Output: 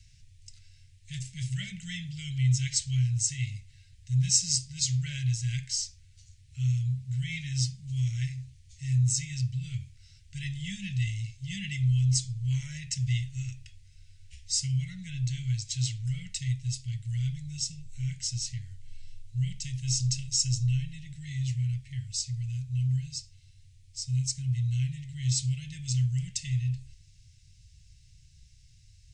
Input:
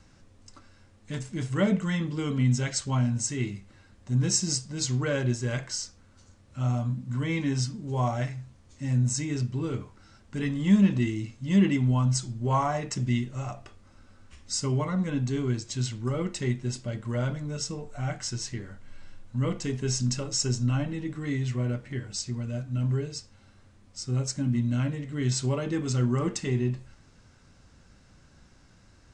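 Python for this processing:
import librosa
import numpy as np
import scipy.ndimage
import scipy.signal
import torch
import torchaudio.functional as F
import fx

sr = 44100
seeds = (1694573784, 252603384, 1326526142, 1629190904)

y = scipy.signal.sosfilt(scipy.signal.cheby2(4, 40, [230.0, 1200.0], 'bandstop', fs=sr, output='sos'), x)
y = fx.peak_eq(y, sr, hz=1200.0, db=fx.steps((0.0, -5.5), (16.37, -14.0)), octaves=1.6)
y = y * librosa.db_to_amplitude(2.5)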